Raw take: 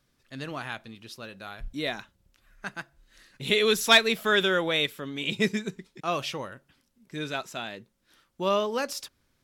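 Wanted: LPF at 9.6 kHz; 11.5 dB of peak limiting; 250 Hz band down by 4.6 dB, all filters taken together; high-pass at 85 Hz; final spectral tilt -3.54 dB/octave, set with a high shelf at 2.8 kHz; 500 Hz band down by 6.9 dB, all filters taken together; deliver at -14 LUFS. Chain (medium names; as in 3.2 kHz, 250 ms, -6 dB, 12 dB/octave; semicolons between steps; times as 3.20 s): high-pass 85 Hz; low-pass 9.6 kHz; peaking EQ 250 Hz -4 dB; peaking EQ 500 Hz -7.5 dB; treble shelf 2.8 kHz -6 dB; trim +21 dB; peak limiter 0 dBFS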